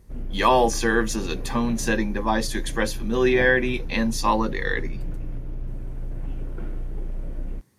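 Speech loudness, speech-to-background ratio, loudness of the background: -23.0 LUFS, 12.5 dB, -35.5 LUFS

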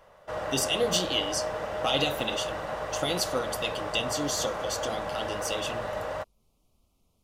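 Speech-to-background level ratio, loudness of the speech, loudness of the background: 3.0 dB, -30.5 LUFS, -33.5 LUFS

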